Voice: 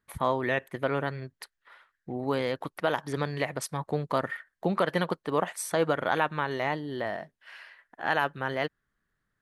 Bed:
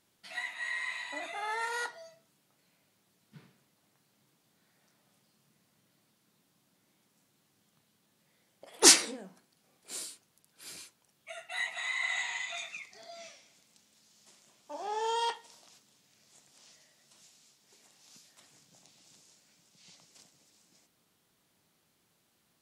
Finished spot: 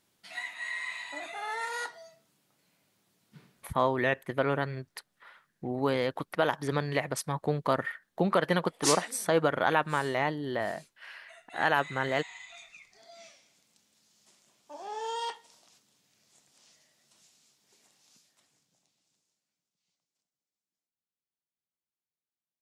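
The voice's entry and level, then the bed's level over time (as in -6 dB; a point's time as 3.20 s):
3.55 s, +0.5 dB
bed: 3.58 s 0 dB
4.13 s -10 dB
12.66 s -10 dB
13.20 s -3 dB
17.89 s -3 dB
20.31 s -31 dB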